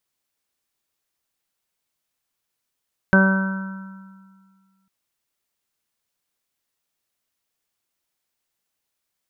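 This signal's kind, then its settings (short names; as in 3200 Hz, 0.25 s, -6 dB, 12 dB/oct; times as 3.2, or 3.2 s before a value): additive tone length 1.75 s, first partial 192 Hz, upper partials -10.5/-7/-18/-12.5/-17/-15/-1.5 dB, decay 1.92 s, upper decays 0.90/1.09/0.89/1.76/1.28/2.14/1.28 s, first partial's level -12 dB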